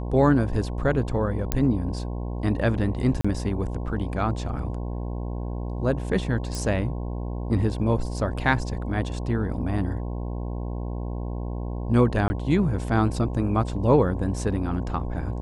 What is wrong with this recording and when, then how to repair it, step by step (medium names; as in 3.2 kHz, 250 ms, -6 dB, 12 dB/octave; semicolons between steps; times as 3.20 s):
buzz 60 Hz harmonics 18 -30 dBFS
1.52 s: pop -7 dBFS
3.21–3.25 s: dropout 35 ms
6.55 s: pop
12.28–12.30 s: dropout 20 ms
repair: de-click; de-hum 60 Hz, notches 18; interpolate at 3.21 s, 35 ms; interpolate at 12.28 s, 20 ms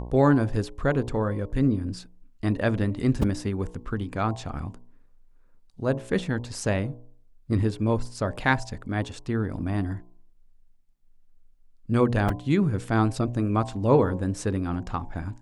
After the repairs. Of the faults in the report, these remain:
nothing left